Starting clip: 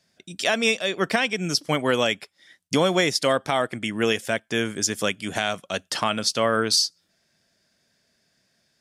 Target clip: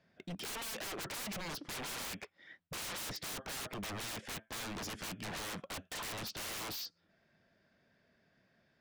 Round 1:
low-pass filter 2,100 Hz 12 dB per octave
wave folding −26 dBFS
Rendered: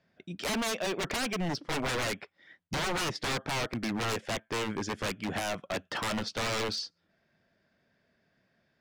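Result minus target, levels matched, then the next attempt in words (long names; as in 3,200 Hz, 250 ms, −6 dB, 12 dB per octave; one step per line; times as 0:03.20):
wave folding: distortion −19 dB
low-pass filter 2,100 Hz 12 dB per octave
wave folding −37 dBFS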